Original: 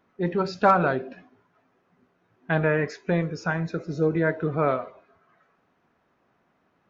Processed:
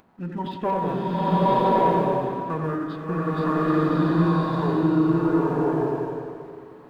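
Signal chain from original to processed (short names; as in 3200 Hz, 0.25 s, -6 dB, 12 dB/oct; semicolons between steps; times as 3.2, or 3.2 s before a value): notches 50/100/150/200/250/300/350/400 Hz; analogue delay 89 ms, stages 2048, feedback 50%, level -4.5 dB; upward compressor, threshold -36 dBFS; sample leveller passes 1; formant shift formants -6 st; bloom reverb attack 1.14 s, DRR -8.5 dB; gain -9 dB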